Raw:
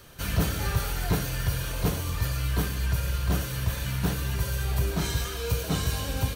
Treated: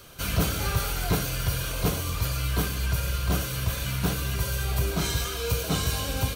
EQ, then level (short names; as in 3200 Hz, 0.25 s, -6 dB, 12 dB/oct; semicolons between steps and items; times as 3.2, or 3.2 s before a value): low shelf 390 Hz -4 dB; notch 890 Hz, Q 12; notch 1800 Hz, Q 7.7; +3.5 dB